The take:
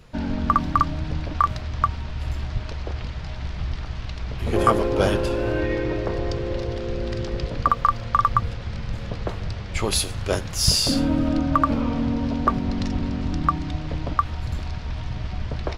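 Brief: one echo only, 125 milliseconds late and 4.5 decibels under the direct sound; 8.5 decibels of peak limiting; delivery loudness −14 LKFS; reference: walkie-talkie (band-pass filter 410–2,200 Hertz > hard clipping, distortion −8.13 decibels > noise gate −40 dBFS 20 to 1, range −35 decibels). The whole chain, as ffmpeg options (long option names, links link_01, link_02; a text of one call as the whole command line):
ffmpeg -i in.wav -af "alimiter=limit=-12dB:level=0:latency=1,highpass=410,lowpass=2200,aecho=1:1:125:0.596,asoftclip=type=hard:threshold=-25.5dB,agate=range=-35dB:threshold=-40dB:ratio=20,volume=18.5dB" out.wav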